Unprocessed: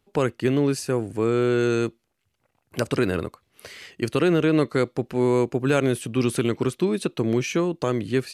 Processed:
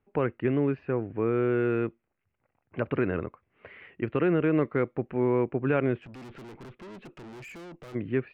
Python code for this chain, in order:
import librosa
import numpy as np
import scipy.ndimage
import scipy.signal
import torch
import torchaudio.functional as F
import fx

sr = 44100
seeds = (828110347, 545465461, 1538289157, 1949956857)

y = scipy.signal.sosfilt(scipy.signal.butter(6, 2500.0, 'lowpass', fs=sr, output='sos'), x)
y = fx.tube_stage(y, sr, drive_db=38.0, bias=0.2, at=(6.0, 7.94), fade=0.02)
y = y * librosa.db_to_amplitude(-4.5)